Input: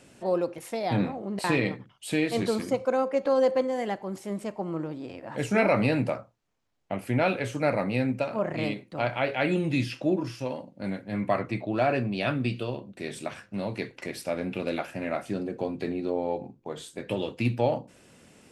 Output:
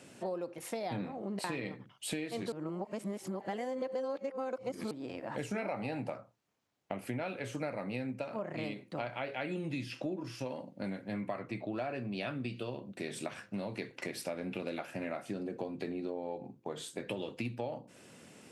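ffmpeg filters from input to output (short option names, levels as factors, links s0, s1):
-filter_complex "[0:a]asettb=1/sr,asplit=3[s0][s1][s2];[s0]atrim=end=5.674[s3];[s1]atrim=start=5.67:end=6.1,asetpts=PTS-STARTPTS,afade=t=in:d=0.004:c=qsin,afade=t=out:st=0.426:d=0.004:c=qsin,equalizer=f=790:t=o:w=0.32:g=11.5[s4];[s2]atrim=start=6.096[s5];[s3][s4]acrossfade=d=0.004:c1=hsin:c2=qsin[s6];[s6][s5]acrossfade=d=0.004:c1=qsin:c2=hsin,asplit=3[s7][s8][s9];[s7]atrim=end=2.522[s10];[s8]atrim=start=2.518:end=4.912,asetpts=PTS-STARTPTS,areverse[s11];[s9]atrim=start=4.908[s12];[s10][s11]acrossfade=d=0.004:c1=hsin:c2=hsin[s13];[s13][s12]acrossfade=d=0.004:c1=hsin:c2=hsin,highpass=110,acompressor=threshold=0.0178:ratio=6"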